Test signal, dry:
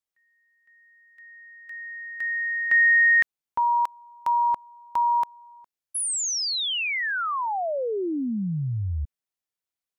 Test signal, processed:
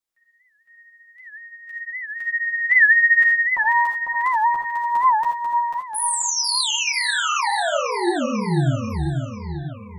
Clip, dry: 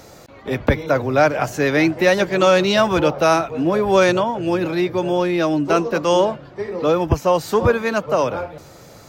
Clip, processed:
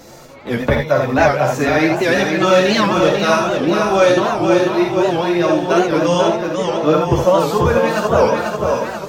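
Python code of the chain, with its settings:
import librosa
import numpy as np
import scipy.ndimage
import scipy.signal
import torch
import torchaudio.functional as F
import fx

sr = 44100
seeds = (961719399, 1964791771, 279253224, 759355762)

p1 = fx.chorus_voices(x, sr, voices=6, hz=0.3, base_ms=10, depth_ms=4.7, mix_pct=50)
p2 = p1 + fx.echo_feedback(p1, sr, ms=492, feedback_pct=51, wet_db=-5, dry=0)
p3 = fx.rev_gated(p2, sr, seeds[0], gate_ms=100, shape='rising', drr_db=2.5)
p4 = fx.rider(p3, sr, range_db=5, speed_s=2.0)
p5 = p3 + F.gain(torch.from_numpy(p4), 2.0).numpy()
p6 = fx.record_warp(p5, sr, rpm=78.0, depth_cents=160.0)
y = F.gain(torch.from_numpy(p6), -4.5).numpy()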